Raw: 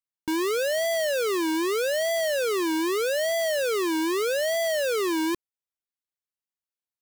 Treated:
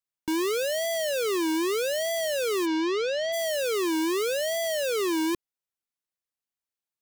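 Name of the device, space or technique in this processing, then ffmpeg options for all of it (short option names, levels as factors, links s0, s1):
one-band saturation: -filter_complex "[0:a]acrossover=split=510|2500[s0][s1][s2];[s1]asoftclip=type=tanh:threshold=0.0266[s3];[s0][s3][s2]amix=inputs=3:normalize=0,asplit=3[s4][s5][s6];[s4]afade=t=out:st=2.65:d=0.02[s7];[s5]lowpass=f=5300:w=0.5412,lowpass=f=5300:w=1.3066,afade=t=in:st=2.65:d=0.02,afade=t=out:st=3.32:d=0.02[s8];[s6]afade=t=in:st=3.32:d=0.02[s9];[s7][s8][s9]amix=inputs=3:normalize=0"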